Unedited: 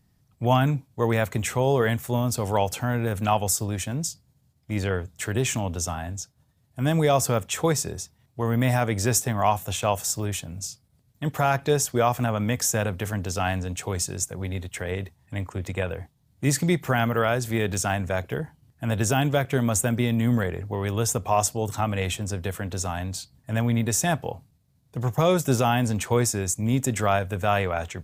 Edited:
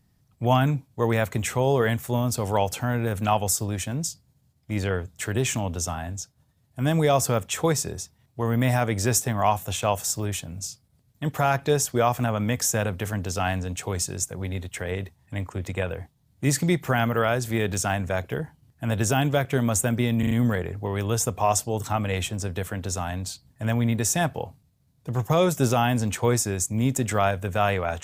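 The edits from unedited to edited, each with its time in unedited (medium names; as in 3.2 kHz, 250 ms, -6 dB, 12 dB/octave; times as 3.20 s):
20.19 s: stutter 0.04 s, 4 plays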